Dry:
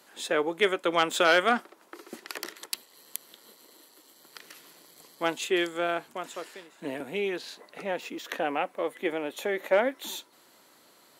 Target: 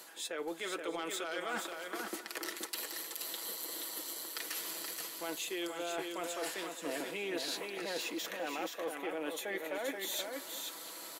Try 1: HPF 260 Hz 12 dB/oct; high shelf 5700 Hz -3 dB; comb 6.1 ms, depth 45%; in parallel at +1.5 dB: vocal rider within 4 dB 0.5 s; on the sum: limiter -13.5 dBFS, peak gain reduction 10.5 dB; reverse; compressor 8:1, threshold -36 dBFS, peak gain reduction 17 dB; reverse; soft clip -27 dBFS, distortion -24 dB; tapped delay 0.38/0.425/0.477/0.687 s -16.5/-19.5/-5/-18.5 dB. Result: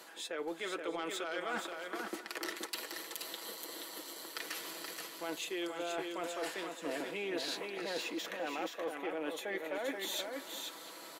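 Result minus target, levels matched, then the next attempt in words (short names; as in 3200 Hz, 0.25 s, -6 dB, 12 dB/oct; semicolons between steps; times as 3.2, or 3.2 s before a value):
8000 Hz band -3.5 dB
HPF 260 Hz 12 dB/oct; high shelf 5700 Hz +7 dB; comb 6.1 ms, depth 45%; in parallel at +1.5 dB: vocal rider within 4 dB 0.5 s; on the sum: limiter -13.5 dBFS, peak gain reduction 16.5 dB; reverse; compressor 8:1, threshold -36 dBFS, peak gain reduction 17 dB; reverse; soft clip -27 dBFS, distortion -23 dB; tapped delay 0.38/0.425/0.477/0.687 s -16.5/-19.5/-5/-18.5 dB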